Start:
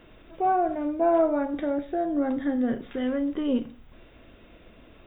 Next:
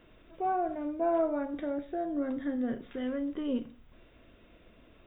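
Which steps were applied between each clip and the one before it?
band-stop 810 Hz, Q 16; trim -6.5 dB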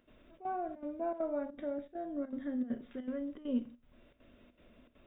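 upward compressor, threshold -48 dBFS; trance gate ".xxxx.xxxx" 200 bpm -12 dB; small resonant body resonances 240/580 Hz, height 9 dB, ringing for 100 ms; trim -7.5 dB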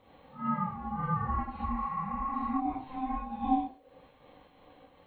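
phase randomisation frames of 200 ms; ring modulator 520 Hz; spectral replace 1.72–2.57 s, 770–2800 Hz before; trim +7.5 dB

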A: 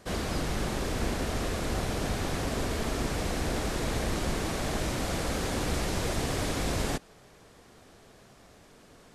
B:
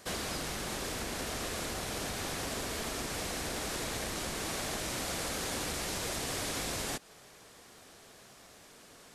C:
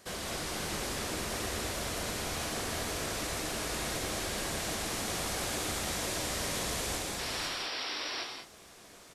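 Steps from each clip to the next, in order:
compression 2.5:1, threshold -33 dBFS, peak gain reduction 6 dB; tilt EQ +2 dB/octave
multi-tap echo 213/506 ms -4/-3.5 dB; painted sound noise, 7.18–8.24 s, 240–5800 Hz -36 dBFS; gated-style reverb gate 230 ms flat, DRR 1 dB; trim -3.5 dB

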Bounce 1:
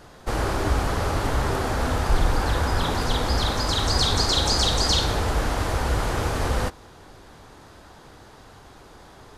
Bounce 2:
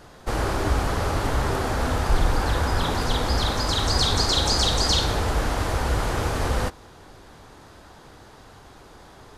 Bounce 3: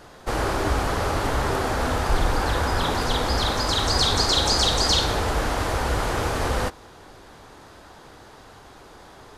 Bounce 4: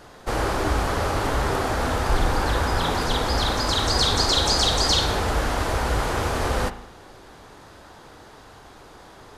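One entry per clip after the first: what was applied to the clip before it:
no audible change
hard clipper -9.5 dBFS, distortion -49 dB; tone controls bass -4 dB, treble -1 dB; trim +2 dB
reverberation RT60 0.80 s, pre-delay 37 ms, DRR 11.5 dB

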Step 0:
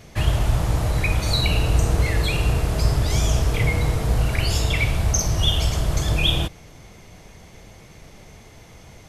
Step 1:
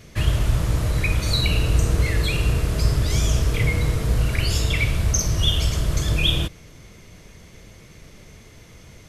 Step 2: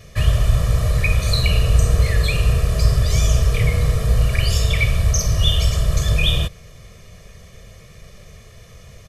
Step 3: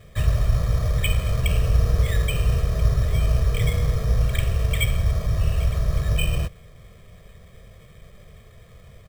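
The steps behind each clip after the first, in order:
peaking EQ 790 Hz -9 dB 0.57 oct
comb 1.7 ms, depth 76%
careless resampling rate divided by 8×, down filtered, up hold; trim -4 dB

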